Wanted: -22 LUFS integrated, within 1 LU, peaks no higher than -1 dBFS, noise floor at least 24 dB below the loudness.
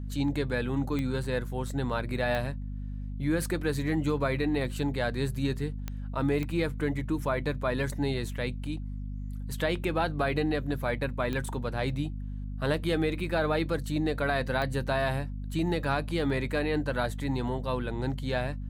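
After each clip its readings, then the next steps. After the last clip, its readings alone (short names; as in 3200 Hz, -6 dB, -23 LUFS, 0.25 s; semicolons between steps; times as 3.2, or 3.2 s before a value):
clicks 6; hum 50 Hz; harmonics up to 250 Hz; hum level -33 dBFS; loudness -30.5 LUFS; peak -14.5 dBFS; loudness target -22.0 LUFS
-> de-click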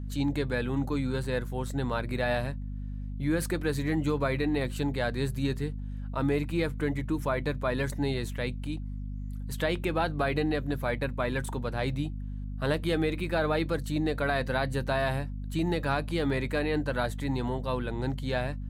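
clicks 0; hum 50 Hz; harmonics up to 250 Hz; hum level -33 dBFS
-> notches 50/100/150/200/250 Hz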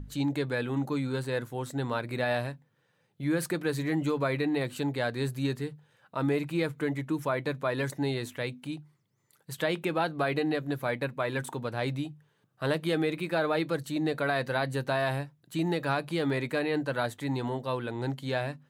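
hum none; loudness -31.0 LUFS; peak -14.5 dBFS; loudness target -22.0 LUFS
-> gain +9 dB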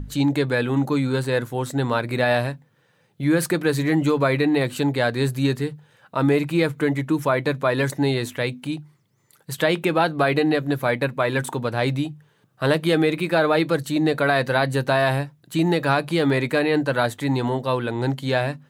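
loudness -22.0 LUFS; peak -5.5 dBFS; noise floor -63 dBFS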